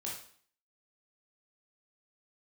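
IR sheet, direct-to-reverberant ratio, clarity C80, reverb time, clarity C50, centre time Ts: -4.0 dB, 8.0 dB, 0.50 s, 3.0 dB, 40 ms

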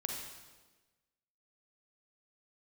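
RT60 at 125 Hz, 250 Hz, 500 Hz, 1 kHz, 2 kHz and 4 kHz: 1.3 s, 1.4 s, 1.4 s, 1.2 s, 1.1 s, 1.1 s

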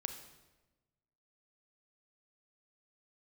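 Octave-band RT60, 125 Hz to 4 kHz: 1.6 s, 1.4 s, 1.2 s, 1.0 s, 1.0 s, 0.90 s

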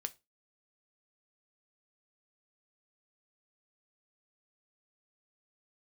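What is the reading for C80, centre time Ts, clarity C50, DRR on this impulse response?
30.5 dB, 3 ms, 22.5 dB, 9.0 dB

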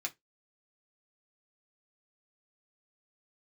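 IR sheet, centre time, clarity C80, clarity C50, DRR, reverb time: 7 ms, 35.0 dB, 23.5 dB, 0.0 dB, 0.15 s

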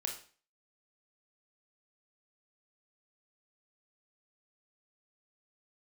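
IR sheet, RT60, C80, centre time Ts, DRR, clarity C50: 0.40 s, 12.5 dB, 22 ms, 1.5 dB, 7.5 dB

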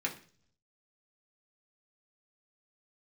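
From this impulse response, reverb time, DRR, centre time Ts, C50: 0.45 s, -2.5 dB, 13 ms, 12.0 dB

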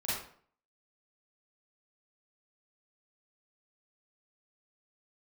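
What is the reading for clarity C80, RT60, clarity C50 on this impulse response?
4.5 dB, 0.55 s, -1.5 dB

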